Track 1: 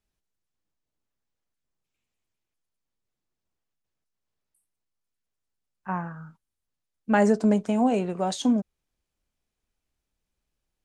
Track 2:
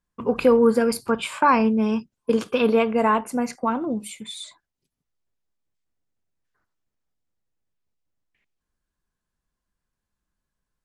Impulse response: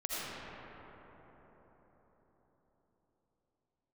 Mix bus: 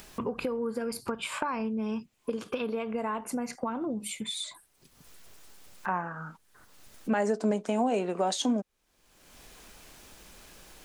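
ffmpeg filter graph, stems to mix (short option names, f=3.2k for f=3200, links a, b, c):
-filter_complex "[0:a]highpass=290,alimiter=limit=-21dB:level=0:latency=1:release=280,volume=3dB[a];[1:a]acompressor=threshold=-25dB:ratio=6,volume=-5.5dB[b];[a][b]amix=inputs=2:normalize=0,acompressor=mode=upward:threshold=-27dB:ratio=2.5"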